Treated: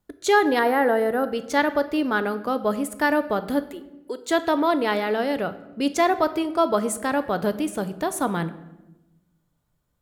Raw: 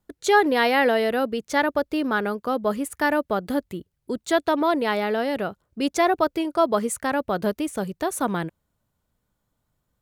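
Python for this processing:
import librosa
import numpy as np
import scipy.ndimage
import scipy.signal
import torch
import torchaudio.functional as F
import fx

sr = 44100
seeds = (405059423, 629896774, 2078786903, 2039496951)

y = fx.band_shelf(x, sr, hz=3700.0, db=-14.5, octaves=1.7, at=(0.59, 1.24))
y = fx.highpass(y, sr, hz=350.0, slope=24, at=(3.67, 4.3))
y = fx.room_shoebox(y, sr, seeds[0], volume_m3=420.0, walls='mixed', distance_m=0.36)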